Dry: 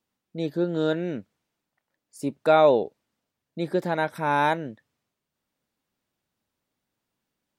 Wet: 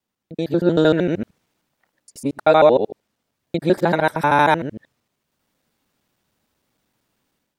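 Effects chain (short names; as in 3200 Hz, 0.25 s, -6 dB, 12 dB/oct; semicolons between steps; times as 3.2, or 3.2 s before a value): local time reversal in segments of 77 ms; AGC gain up to 11 dB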